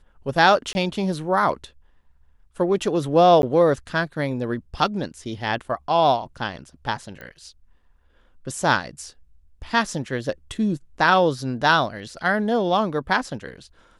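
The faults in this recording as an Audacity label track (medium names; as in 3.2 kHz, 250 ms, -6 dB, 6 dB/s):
0.730000	0.750000	dropout 20 ms
3.420000	3.430000	dropout 11 ms
7.210000	7.210000	pop -24 dBFS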